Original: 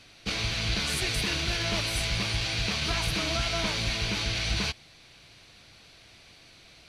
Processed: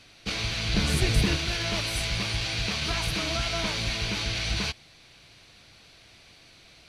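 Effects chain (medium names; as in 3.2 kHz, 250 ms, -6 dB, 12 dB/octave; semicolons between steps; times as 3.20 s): 0.74–1.36 s: bass shelf 480 Hz +11 dB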